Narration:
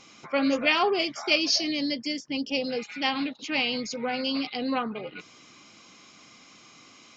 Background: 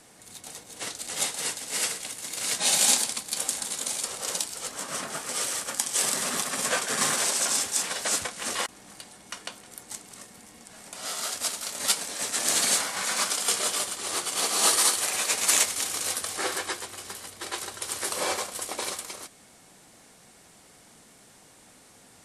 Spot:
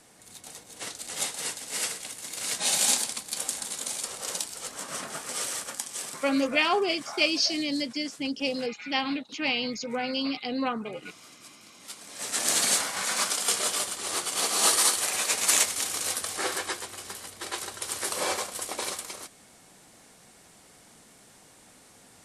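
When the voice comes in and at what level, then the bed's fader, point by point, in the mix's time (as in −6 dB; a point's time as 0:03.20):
5.90 s, −1.0 dB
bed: 0:05.61 −2.5 dB
0:06.57 −22 dB
0:11.82 −22 dB
0:12.33 −0.5 dB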